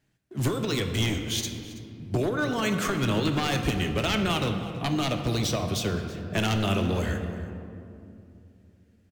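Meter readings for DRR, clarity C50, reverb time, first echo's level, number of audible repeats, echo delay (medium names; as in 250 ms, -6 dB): 4.5 dB, 6.5 dB, 2.7 s, -17.5 dB, 1, 327 ms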